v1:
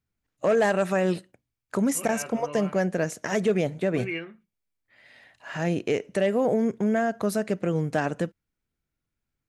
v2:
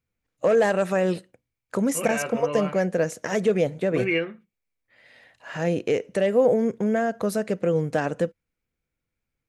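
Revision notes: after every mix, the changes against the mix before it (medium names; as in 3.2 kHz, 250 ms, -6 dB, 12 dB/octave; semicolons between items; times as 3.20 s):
second voice +7.0 dB; master: add peaking EQ 500 Hz +8.5 dB 0.21 oct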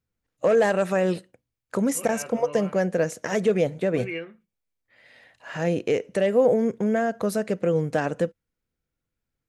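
second voice -8.5 dB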